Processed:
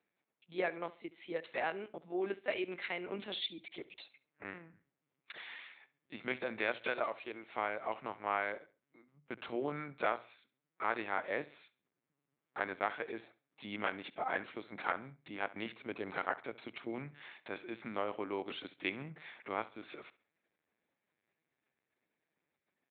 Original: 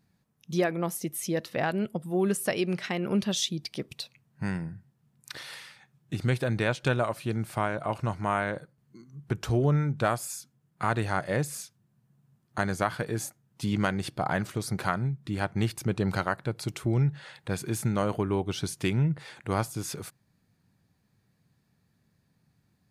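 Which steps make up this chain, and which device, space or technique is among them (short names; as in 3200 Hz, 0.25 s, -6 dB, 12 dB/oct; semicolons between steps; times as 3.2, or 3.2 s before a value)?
6.81–7.51 HPF 270 Hz 12 dB/oct; talking toy (LPC vocoder at 8 kHz pitch kept; HPF 370 Hz 12 dB/oct; bell 2200 Hz +7 dB 0.32 oct); notches 60/120 Hz; feedback echo 68 ms, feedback 32%, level -19 dB; gain -6.5 dB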